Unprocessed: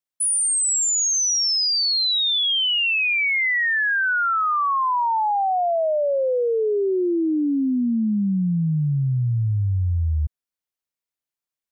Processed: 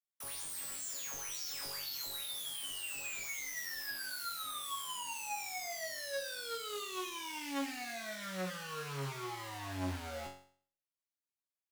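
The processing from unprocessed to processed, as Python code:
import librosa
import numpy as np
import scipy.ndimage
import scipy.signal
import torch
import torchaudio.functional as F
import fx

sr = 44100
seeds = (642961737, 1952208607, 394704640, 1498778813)

y = (np.mod(10.0 ** (27.0 / 20.0) * x + 1.0, 2.0) - 1.0) / 10.0 ** (27.0 / 20.0)
y = fx.resonator_bank(y, sr, root=42, chord='fifth', decay_s=0.49)
y = fx.doppler_dist(y, sr, depth_ms=0.46)
y = F.gain(torch.from_numpy(y), 3.5).numpy()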